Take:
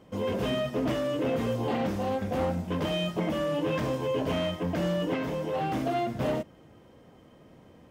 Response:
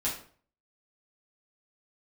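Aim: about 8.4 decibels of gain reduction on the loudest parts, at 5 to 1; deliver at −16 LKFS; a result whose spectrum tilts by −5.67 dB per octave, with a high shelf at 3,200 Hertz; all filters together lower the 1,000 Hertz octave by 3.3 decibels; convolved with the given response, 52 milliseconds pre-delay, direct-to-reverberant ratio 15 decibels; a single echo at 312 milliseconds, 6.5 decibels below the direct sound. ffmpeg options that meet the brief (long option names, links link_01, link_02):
-filter_complex "[0:a]equalizer=frequency=1000:width_type=o:gain=-4.5,highshelf=frequency=3200:gain=-3,acompressor=threshold=-35dB:ratio=5,aecho=1:1:312:0.473,asplit=2[link_01][link_02];[1:a]atrim=start_sample=2205,adelay=52[link_03];[link_02][link_03]afir=irnorm=-1:irlink=0,volume=-21dB[link_04];[link_01][link_04]amix=inputs=2:normalize=0,volume=21.5dB"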